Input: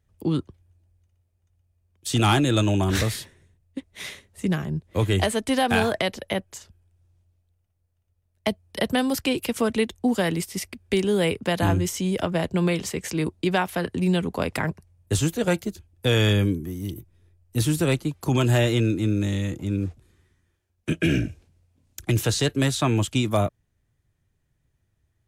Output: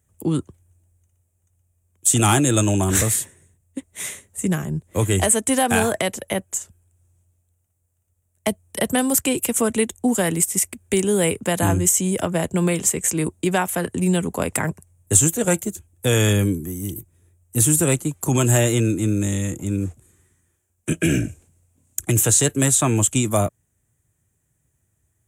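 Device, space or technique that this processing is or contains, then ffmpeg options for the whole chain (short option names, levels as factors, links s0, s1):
budget condenser microphone: -af "highpass=62,highshelf=f=6000:t=q:w=3:g=9,volume=1.33"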